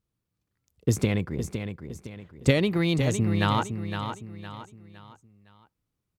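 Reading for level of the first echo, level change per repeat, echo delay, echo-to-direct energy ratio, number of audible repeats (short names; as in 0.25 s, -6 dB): -8.0 dB, -8.5 dB, 0.511 s, -7.5 dB, 4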